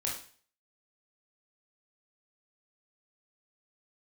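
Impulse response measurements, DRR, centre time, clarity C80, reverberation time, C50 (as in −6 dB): −3.0 dB, 34 ms, 9.5 dB, 0.45 s, 4.5 dB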